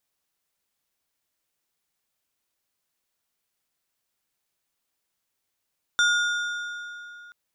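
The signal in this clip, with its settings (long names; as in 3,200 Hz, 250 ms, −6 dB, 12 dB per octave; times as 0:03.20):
struck metal plate, length 1.33 s, lowest mode 1,430 Hz, modes 5, decay 2.99 s, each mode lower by 6 dB, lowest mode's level −17.5 dB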